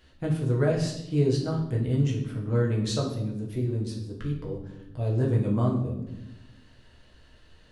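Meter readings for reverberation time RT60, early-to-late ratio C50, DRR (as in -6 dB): 0.90 s, 6.5 dB, -2.5 dB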